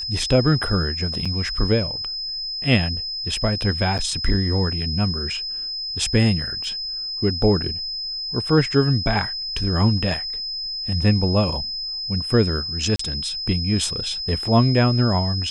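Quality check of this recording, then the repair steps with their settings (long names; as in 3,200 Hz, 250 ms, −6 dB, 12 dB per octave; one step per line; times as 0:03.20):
whistle 5,100 Hz −26 dBFS
0:01.25–0:01.26: drop-out 5.4 ms
0:03.98–0:03.99: drop-out 7.9 ms
0:06.64: drop-out 2.2 ms
0:12.96–0:12.99: drop-out 34 ms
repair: notch filter 5,100 Hz, Q 30
repair the gap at 0:01.25, 5.4 ms
repair the gap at 0:03.98, 7.9 ms
repair the gap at 0:06.64, 2.2 ms
repair the gap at 0:12.96, 34 ms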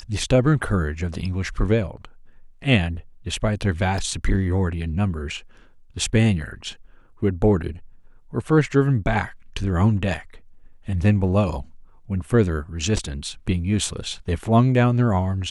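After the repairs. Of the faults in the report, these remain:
none of them is left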